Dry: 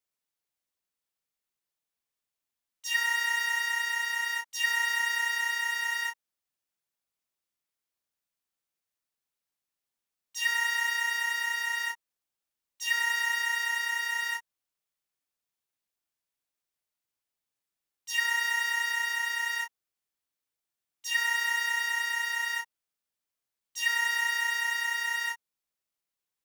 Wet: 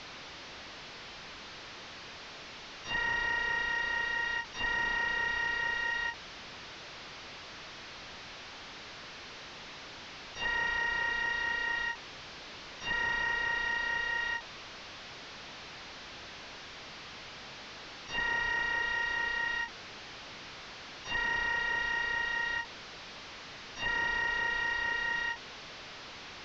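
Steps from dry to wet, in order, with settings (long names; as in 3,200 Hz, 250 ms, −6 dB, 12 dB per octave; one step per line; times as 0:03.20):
linear delta modulator 32 kbit/s, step −37.5 dBFS
Bessel low-pass filter 4,100 Hz, order 4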